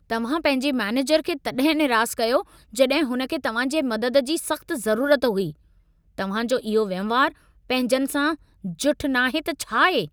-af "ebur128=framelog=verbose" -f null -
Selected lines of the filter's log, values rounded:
Integrated loudness:
  I:         -22.6 LUFS
  Threshold: -32.9 LUFS
Loudness range:
  LRA:         2.2 LU
  Threshold: -43.2 LUFS
  LRA low:   -24.3 LUFS
  LRA high:  -22.1 LUFS